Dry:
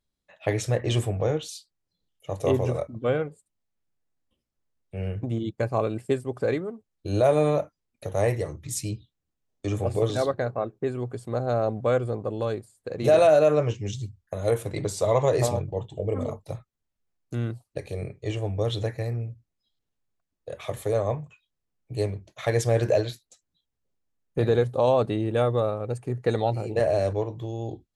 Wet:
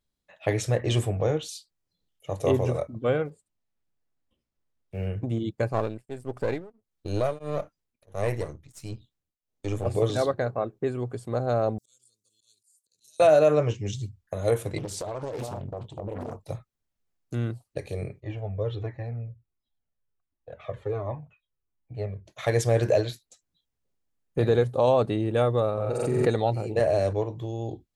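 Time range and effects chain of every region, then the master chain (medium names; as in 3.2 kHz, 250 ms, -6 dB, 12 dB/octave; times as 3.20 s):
3.25–5.07 s: block-companded coder 7-bit + treble shelf 7.6 kHz -10 dB
5.73–9.86 s: partial rectifier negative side -7 dB + tremolo of two beating tones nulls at 1.5 Hz
11.78–13.20 s: inverse Chebyshev high-pass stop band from 2.1 kHz, stop band 50 dB + slow attack 167 ms + three bands compressed up and down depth 70%
14.78–16.40 s: compression 12:1, threshold -29 dBFS + loudspeaker Doppler distortion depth 0.82 ms
18.20–22.26 s: low-pass 2.3 kHz + Shepard-style flanger falling 1.4 Hz
25.73–26.28 s: hum notches 60/120/180/240 Hz + flutter echo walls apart 7.8 m, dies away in 0.88 s + swell ahead of each attack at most 25 dB/s
whole clip: none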